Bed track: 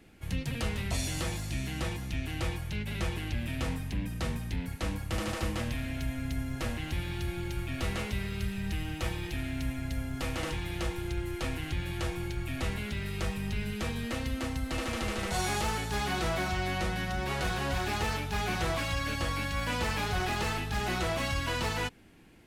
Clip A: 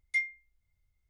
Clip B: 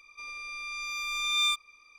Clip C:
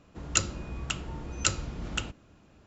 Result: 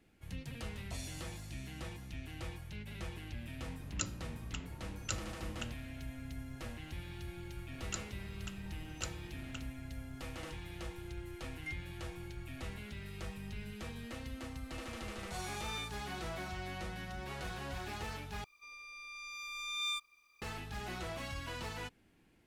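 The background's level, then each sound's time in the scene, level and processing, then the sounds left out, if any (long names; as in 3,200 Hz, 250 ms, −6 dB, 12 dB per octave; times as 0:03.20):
bed track −11 dB
0:03.64: mix in C −12.5 dB
0:07.57: mix in C −16 dB
0:11.52: mix in A −15 dB
0:14.34: mix in B −16.5 dB + adaptive Wiener filter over 15 samples
0:18.44: overwrite with B −10.5 dB + bit reduction 11 bits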